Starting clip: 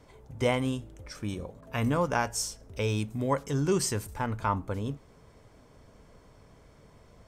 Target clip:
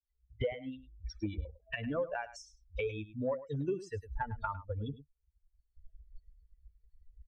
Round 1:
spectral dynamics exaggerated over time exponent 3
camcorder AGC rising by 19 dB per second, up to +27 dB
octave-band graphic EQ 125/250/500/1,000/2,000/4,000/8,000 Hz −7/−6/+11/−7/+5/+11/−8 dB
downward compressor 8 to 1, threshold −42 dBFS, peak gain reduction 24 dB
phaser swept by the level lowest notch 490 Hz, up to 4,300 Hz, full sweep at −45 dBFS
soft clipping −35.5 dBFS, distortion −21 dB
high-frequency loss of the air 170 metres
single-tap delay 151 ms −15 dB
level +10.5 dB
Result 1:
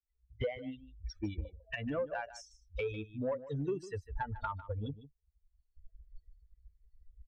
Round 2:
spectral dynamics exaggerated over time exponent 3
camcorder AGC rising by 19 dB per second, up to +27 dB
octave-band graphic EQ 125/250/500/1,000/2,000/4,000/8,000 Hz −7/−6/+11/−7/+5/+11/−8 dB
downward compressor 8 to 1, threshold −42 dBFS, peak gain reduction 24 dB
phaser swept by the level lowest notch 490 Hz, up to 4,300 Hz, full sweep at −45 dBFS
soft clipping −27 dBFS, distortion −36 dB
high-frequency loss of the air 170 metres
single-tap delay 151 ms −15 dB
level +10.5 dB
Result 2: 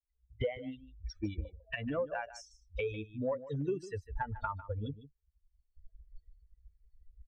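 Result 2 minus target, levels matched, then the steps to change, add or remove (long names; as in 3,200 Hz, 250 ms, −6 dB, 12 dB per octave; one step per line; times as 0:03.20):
echo 47 ms late
change: single-tap delay 104 ms −15 dB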